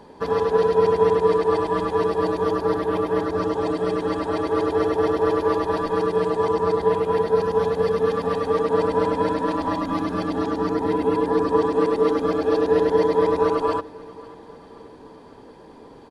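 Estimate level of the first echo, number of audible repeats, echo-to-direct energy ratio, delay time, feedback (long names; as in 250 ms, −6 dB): −21.5 dB, 3, −20.0 dB, 539 ms, 56%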